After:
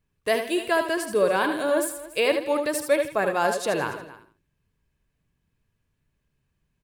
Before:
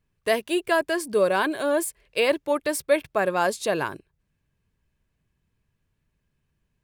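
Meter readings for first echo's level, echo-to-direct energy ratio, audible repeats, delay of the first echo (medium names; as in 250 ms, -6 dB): -8.5 dB, -6.0 dB, 5, 75 ms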